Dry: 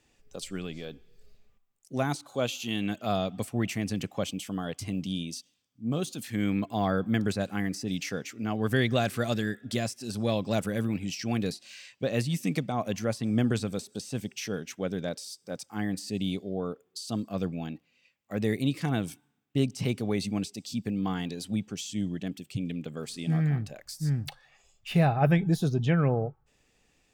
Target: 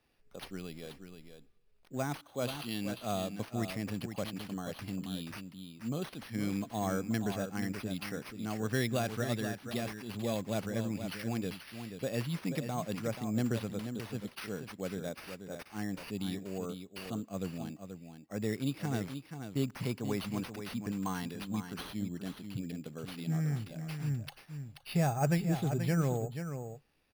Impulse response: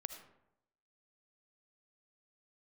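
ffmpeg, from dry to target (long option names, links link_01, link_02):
-filter_complex "[0:a]asettb=1/sr,asplit=3[link_01][link_02][link_03];[link_01]atrim=end=19.634[link_04];[link_02]atrim=start=19.63:end=21.82,asetpts=PTS-STARTPTS,afade=type=in:duration=0.004:curve=qsin,afade=type=out:start_time=2.186:duration=0.004:curve=qsin,equalizer=frequency=1000:width_type=o:width=0.33:gain=9,equalizer=frequency=1600:width_type=o:width=0.33:gain=6,equalizer=frequency=6300:width_type=o:width=0.33:gain=5[link_05];[link_03]atrim=start=21.816[link_06];[link_04][link_05]acrossfade=duration=0.004:curve1=hsin:curve2=qsin[link_07];[link_07][link_06]acrossfade=duration=0.004:curve1=qsin:curve2=hsin,acrusher=samples=6:mix=1:aa=0.000001,aecho=1:1:482:0.376,volume=-6.5dB"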